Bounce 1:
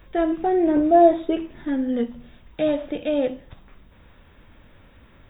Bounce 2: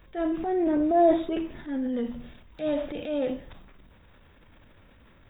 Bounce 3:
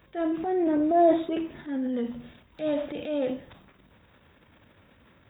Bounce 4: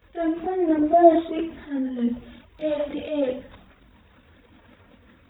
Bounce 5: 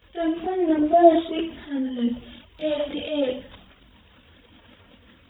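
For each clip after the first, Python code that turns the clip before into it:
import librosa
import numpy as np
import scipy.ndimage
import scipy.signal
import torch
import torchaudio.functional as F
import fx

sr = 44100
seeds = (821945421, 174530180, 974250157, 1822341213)

y1 = fx.transient(x, sr, attack_db=-7, sustain_db=7)
y1 = y1 * 10.0 ** (-5.0 / 20.0)
y2 = scipy.signal.sosfilt(scipy.signal.butter(2, 83.0, 'highpass', fs=sr, output='sos'), y1)
y3 = fx.chorus_voices(y2, sr, voices=6, hz=0.88, base_ms=23, depth_ms=2.5, mix_pct=70)
y3 = y3 * 10.0 ** (5.0 / 20.0)
y4 = fx.peak_eq(y3, sr, hz=3100.0, db=10.5, octaves=0.45)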